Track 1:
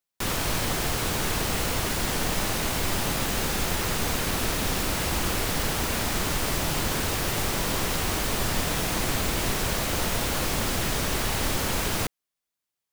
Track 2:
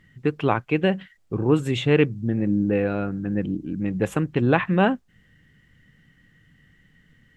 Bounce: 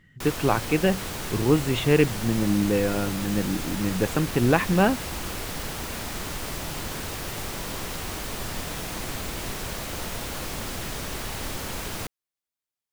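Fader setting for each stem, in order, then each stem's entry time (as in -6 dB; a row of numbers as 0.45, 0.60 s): -6.0, -1.0 dB; 0.00, 0.00 s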